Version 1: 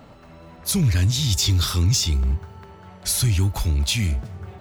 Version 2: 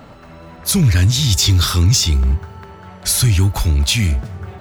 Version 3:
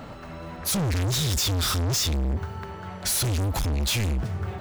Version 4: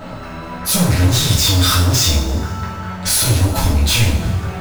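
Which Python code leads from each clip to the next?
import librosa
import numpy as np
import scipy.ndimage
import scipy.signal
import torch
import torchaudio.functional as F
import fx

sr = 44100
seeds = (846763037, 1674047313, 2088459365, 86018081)

y1 = fx.peak_eq(x, sr, hz=1500.0, db=3.0, octaves=0.77)
y1 = y1 * librosa.db_to_amplitude(6.0)
y2 = np.clip(10.0 ** (23.5 / 20.0) * y1, -1.0, 1.0) / 10.0 ** (23.5 / 20.0)
y3 = fx.rev_double_slope(y2, sr, seeds[0], early_s=0.5, late_s=1.9, knee_db=-16, drr_db=-6.0)
y3 = y3 * librosa.db_to_amplitude(3.5)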